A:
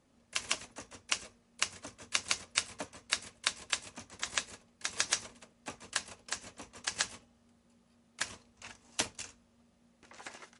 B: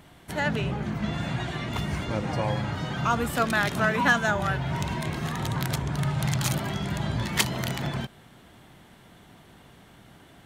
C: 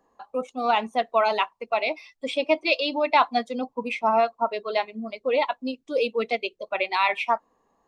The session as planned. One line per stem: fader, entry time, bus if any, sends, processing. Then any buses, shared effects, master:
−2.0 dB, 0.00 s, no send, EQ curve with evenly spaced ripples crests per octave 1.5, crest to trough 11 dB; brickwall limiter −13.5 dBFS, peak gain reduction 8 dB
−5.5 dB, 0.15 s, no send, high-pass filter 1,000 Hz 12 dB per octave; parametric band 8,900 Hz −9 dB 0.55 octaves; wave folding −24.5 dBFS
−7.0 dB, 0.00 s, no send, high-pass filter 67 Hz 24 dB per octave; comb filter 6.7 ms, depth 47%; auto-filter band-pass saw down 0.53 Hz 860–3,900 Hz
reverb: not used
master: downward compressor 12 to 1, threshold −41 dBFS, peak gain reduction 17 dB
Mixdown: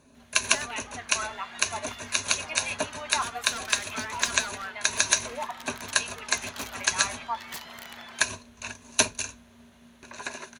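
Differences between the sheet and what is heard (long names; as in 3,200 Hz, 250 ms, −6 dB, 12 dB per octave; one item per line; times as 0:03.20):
stem A −2.0 dB → +9.5 dB
master: missing downward compressor 12 to 1, threshold −41 dBFS, peak gain reduction 17 dB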